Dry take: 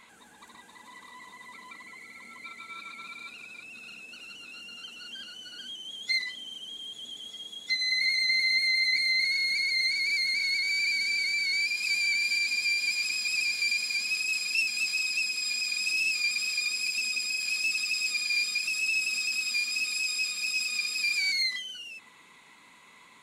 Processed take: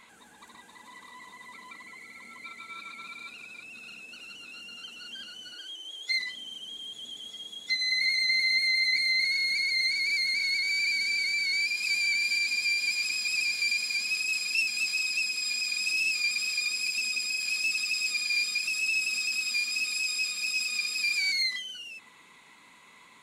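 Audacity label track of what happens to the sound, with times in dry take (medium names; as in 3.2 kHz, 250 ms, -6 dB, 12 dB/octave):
5.540000	6.180000	elliptic high-pass 310 Hz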